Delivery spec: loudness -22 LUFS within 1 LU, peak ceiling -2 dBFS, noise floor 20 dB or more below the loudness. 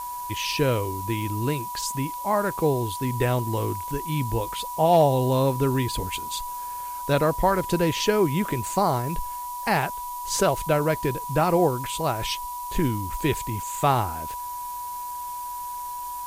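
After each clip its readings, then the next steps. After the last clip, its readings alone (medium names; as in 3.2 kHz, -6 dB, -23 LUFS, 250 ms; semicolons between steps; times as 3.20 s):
steady tone 980 Hz; tone level -31 dBFS; noise floor -33 dBFS; noise floor target -46 dBFS; loudness -25.5 LUFS; peak level -8.5 dBFS; loudness target -22.0 LUFS
-> band-stop 980 Hz, Q 30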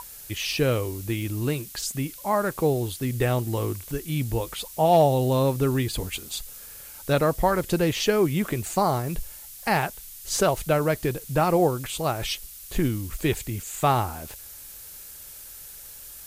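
steady tone not found; noise floor -43 dBFS; noise floor target -46 dBFS
-> noise print and reduce 6 dB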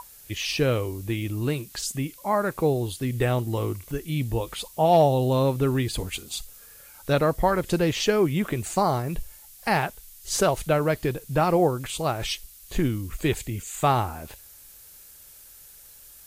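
noise floor -49 dBFS; loudness -25.5 LUFS; peak level -9.5 dBFS; loudness target -22.0 LUFS
-> trim +3.5 dB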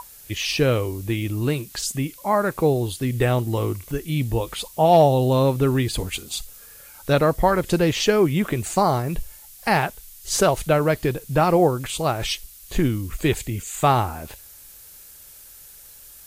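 loudness -22.0 LUFS; peak level -6.0 dBFS; noise floor -45 dBFS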